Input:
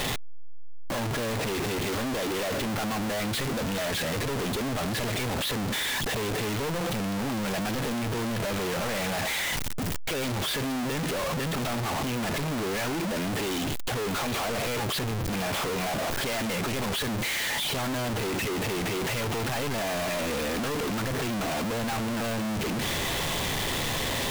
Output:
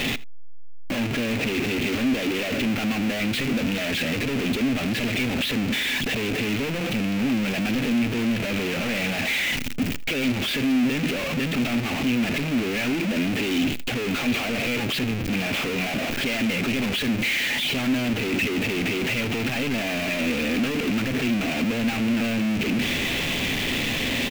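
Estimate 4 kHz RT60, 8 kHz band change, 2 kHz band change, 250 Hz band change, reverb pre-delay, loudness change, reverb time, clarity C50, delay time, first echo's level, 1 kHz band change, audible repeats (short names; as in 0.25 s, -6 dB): none, -2.0 dB, +6.5 dB, +8.0 dB, none, +4.5 dB, none, none, 80 ms, -21.0 dB, -2.5 dB, 1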